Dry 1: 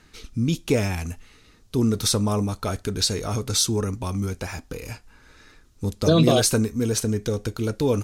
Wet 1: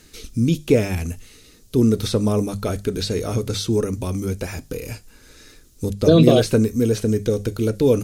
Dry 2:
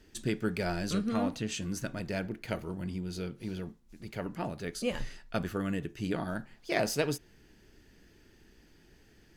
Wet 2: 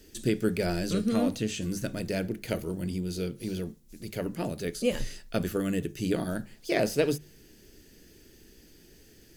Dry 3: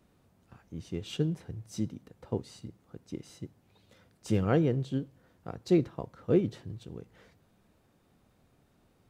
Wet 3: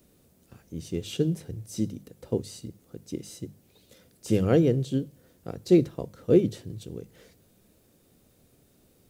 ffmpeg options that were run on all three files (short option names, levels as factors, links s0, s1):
-filter_complex "[0:a]lowshelf=f=670:t=q:w=1.5:g=7,crystalizer=i=5:c=0,acrossover=split=3100[s0][s1];[s1]acompressor=threshold=0.0178:ratio=4:attack=1:release=60[s2];[s0][s2]amix=inputs=2:normalize=0,bandreject=f=50:t=h:w=6,bandreject=f=100:t=h:w=6,bandreject=f=150:t=h:w=6,bandreject=f=200:t=h:w=6,volume=0.708"